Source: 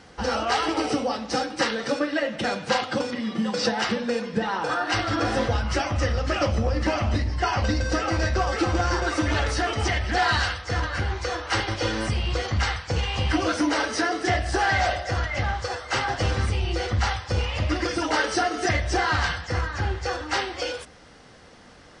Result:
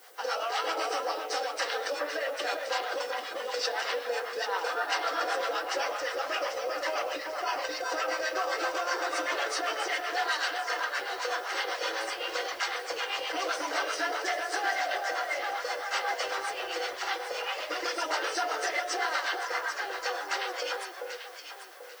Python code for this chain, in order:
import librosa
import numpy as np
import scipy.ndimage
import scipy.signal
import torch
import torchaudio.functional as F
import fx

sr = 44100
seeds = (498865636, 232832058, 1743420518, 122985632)

p1 = scipy.signal.sosfilt(scipy.signal.cheby2(4, 40, 220.0, 'highpass', fs=sr, output='sos'), x)
p2 = fx.notch(p1, sr, hz=870.0, q=18.0)
p3 = fx.over_compress(p2, sr, threshold_db=-28.0, ratio=-1.0)
p4 = p2 + F.gain(torch.from_numpy(p3), -1.0).numpy()
p5 = fx.quant_companded(p4, sr, bits=8)
p6 = fx.harmonic_tremolo(p5, sr, hz=7.8, depth_pct=70, crossover_hz=620.0)
p7 = fx.dmg_noise_colour(p6, sr, seeds[0], colour='blue', level_db=-52.0)
p8 = p7 + fx.echo_alternate(p7, sr, ms=395, hz=1800.0, feedback_pct=59, wet_db=-4.0, dry=0)
y = F.gain(torch.from_numpy(p8), -6.5).numpy()